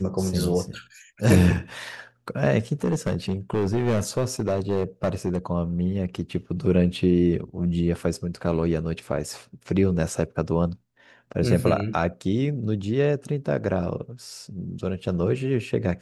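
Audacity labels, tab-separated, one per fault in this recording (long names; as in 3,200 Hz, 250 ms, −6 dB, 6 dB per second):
2.840000	5.380000	clipping −18 dBFS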